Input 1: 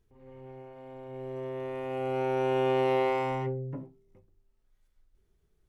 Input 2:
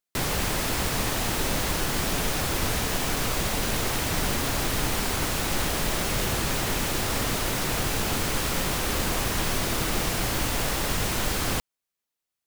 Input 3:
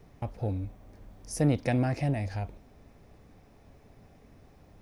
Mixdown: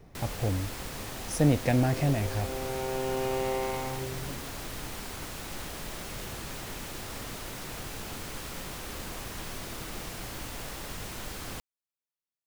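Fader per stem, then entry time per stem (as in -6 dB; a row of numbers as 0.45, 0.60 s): -4.5, -12.5, +2.0 dB; 0.55, 0.00, 0.00 s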